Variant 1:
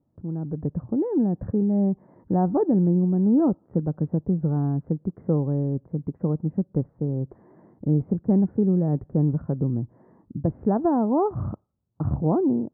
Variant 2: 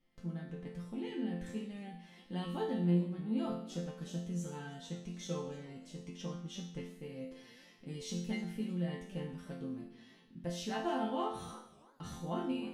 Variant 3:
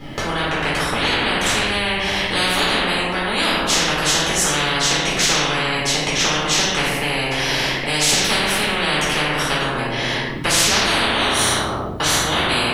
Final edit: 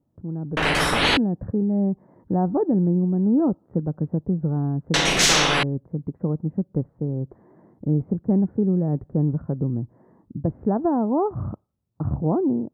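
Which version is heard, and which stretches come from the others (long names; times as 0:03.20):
1
0:00.57–0:01.17: punch in from 3
0:04.94–0:05.63: punch in from 3
not used: 2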